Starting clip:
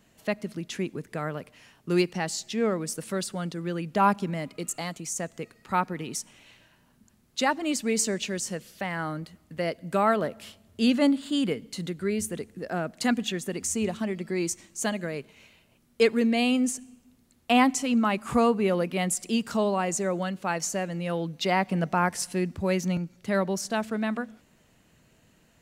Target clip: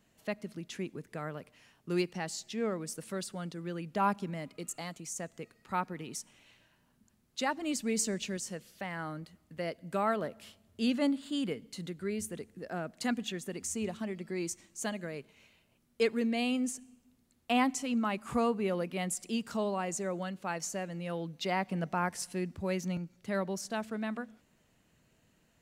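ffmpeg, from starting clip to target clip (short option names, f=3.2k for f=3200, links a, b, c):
-filter_complex "[0:a]asettb=1/sr,asplit=3[a][b][c];[a]atrim=end=7.574[d];[b]atrim=start=7.57:end=8.37,asetpts=PTS-STARTPTS,afade=t=in:d=0.004:c=qsin,afade=t=out:st=0.796:d=0.004:c=qsin,bass=f=250:g=5,treble=f=4k:g=2[e];[c]atrim=start=8.366[f];[d][e]acrossfade=d=0.004:c1=hsin:c2=qsin[g];[g][f]acrossfade=d=0.004:c1=qsin:c2=hsin,volume=-7.5dB"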